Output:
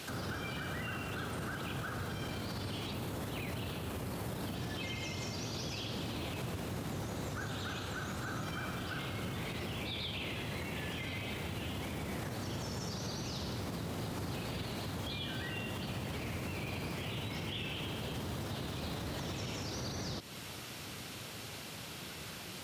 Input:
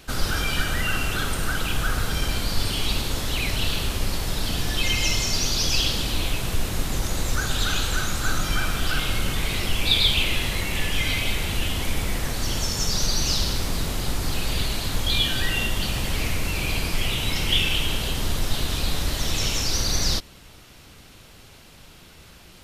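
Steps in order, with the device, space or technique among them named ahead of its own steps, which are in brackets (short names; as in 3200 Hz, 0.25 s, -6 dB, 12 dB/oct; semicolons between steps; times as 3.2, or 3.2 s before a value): 2.93–4.55 bell 4700 Hz -8 dB 1.7 oct; podcast mastering chain (HPF 92 Hz 24 dB/oct; de-esser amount 85%; compressor 2.5:1, threshold -40 dBFS, peak gain reduction 10 dB; limiter -34.5 dBFS, peak gain reduction 8 dB; gain +4 dB; MP3 128 kbps 44100 Hz)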